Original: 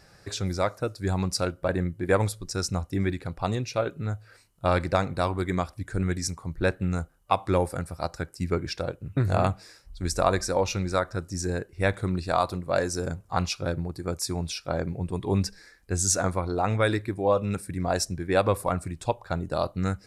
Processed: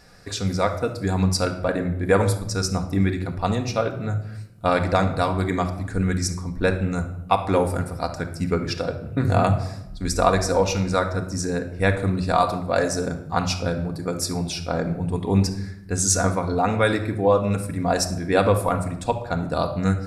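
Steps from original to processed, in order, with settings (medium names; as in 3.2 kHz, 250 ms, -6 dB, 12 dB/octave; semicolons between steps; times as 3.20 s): simulated room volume 2700 m³, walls furnished, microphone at 1.8 m; trim +3 dB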